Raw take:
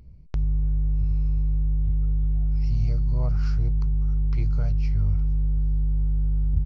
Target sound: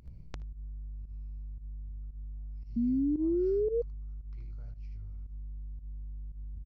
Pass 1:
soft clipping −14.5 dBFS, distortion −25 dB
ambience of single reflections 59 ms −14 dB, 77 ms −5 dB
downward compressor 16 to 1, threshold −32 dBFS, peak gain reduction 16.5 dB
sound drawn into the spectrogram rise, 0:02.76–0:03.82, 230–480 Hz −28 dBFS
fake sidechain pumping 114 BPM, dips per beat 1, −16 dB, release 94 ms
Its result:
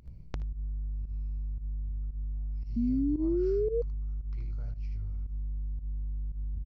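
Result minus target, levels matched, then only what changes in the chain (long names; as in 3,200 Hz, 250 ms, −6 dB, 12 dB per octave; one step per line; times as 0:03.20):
downward compressor: peak gain reduction −7 dB
change: downward compressor 16 to 1, threshold −39.5 dBFS, peak gain reduction 23.5 dB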